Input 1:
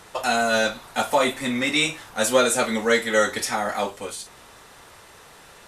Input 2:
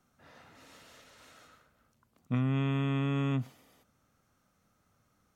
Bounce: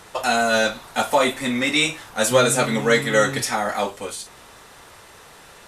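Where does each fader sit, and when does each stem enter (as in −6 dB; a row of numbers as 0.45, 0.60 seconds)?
+2.0, −0.5 decibels; 0.00, 0.00 seconds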